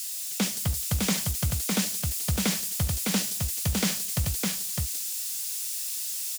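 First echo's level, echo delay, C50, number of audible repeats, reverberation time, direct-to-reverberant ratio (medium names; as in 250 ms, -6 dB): -17.0 dB, 72 ms, no reverb, 2, no reverb, no reverb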